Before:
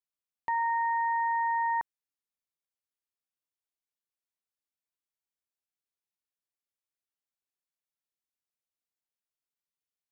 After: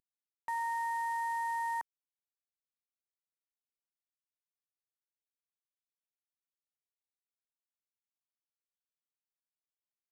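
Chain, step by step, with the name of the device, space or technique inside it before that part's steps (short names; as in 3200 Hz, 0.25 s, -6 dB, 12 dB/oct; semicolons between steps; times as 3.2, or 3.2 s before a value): early wireless headset (HPF 230 Hz 6 dB/oct; CVSD 64 kbps); gain -6 dB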